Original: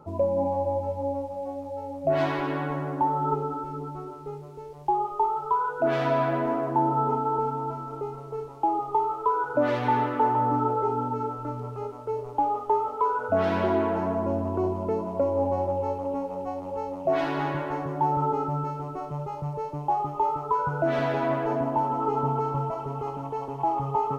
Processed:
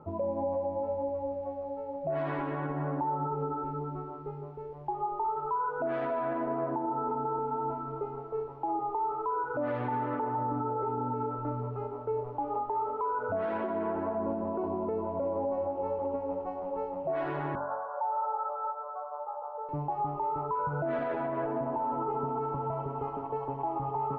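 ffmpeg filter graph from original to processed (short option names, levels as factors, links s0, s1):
-filter_complex "[0:a]asettb=1/sr,asplit=3[s0][s1][s2];[s0]atrim=end=17.554[s3];[s1]atrim=start=17.55:end=19.69,asetpts=PTS-STARTPTS,afade=t=in:d=0.004:c=qsin,afade=t=out:st=2.136:d=0.004:c=qsin,asuperpass=centerf=870:order=20:qfactor=0.78,aecho=1:1:212:0.316,atrim=end_sample=94374[s4];[s2]atrim=start=19.686[s5];[s3][s4]acrossfade=d=0.004:c1=hsin:c2=qsin[s6];[s6][s5]acrossfade=d=0.004:c1=qsin:c2=hsin,lowpass=1700,bandreject=f=46.18:t=h:w=4,bandreject=f=92.36:t=h:w=4,bandreject=f=138.54:t=h:w=4,bandreject=f=184.72:t=h:w=4,bandreject=f=230.9:t=h:w=4,bandreject=f=277.08:t=h:w=4,bandreject=f=323.26:t=h:w=4,bandreject=f=369.44:t=h:w=4,bandreject=f=415.62:t=h:w=4,bandreject=f=461.8:t=h:w=4,bandreject=f=507.98:t=h:w=4,bandreject=f=554.16:t=h:w=4,bandreject=f=600.34:t=h:w=4,bandreject=f=646.52:t=h:w=4,bandreject=f=692.7:t=h:w=4,bandreject=f=738.88:t=h:w=4,bandreject=f=785.06:t=h:w=4,bandreject=f=831.24:t=h:w=4,bandreject=f=877.42:t=h:w=4,bandreject=f=923.6:t=h:w=4,bandreject=f=969.78:t=h:w=4,bandreject=f=1015.96:t=h:w=4,bandreject=f=1062.14:t=h:w=4,bandreject=f=1108.32:t=h:w=4,bandreject=f=1154.5:t=h:w=4,bandreject=f=1200.68:t=h:w=4,bandreject=f=1246.86:t=h:w=4,bandreject=f=1293.04:t=h:w=4,bandreject=f=1339.22:t=h:w=4,bandreject=f=1385.4:t=h:w=4,bandreject=f=1431.58:t=h:w=4,bandreject=f=1477.76:t=h:w=4,alimiter=limit=0.0631:level=0:latency=1:release=96"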